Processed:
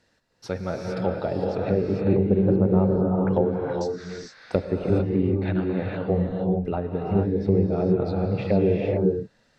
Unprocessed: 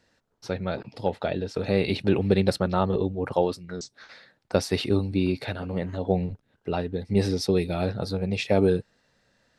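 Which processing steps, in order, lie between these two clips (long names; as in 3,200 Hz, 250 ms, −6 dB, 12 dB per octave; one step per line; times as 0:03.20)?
treble cut that deepens with the level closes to 650 Hz, closed at −21 dBFS
reverb whose tail is shaped and stops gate 480 ms rising, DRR −0.5 dB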